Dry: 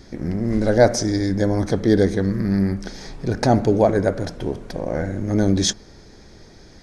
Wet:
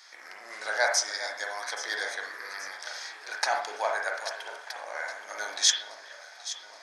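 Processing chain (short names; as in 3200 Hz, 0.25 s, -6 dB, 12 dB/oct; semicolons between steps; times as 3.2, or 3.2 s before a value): HPF 970 Hz 24 dB/oct; echo with dull and thin repeats by turns 0.413 s, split 2000 Hz, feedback 74%, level -11.5 dB; on a send at -2 dB: reverb, pre-delay 37 ms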